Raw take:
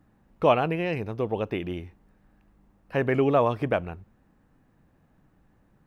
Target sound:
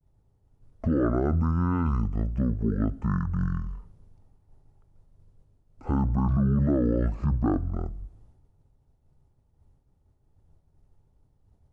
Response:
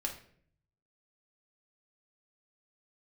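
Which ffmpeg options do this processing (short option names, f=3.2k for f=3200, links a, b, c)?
-filter_complex "[0:a]agate=range=-33dB:threshold=-55dB:ratio=3:detection=peak,lowshelf=f=250:g=9,alimiter=limit=-17dB:level=0:latency=1:release=13,asplit=2[a][b];[1:a]atrim=start_sample=2205[c];[b][c]afir=irnorm=-1:irlink=0,volume=-19.5dB[d];[a][d]amix=inputs=2:normalize=0,asetrate=22050,aresample=44100"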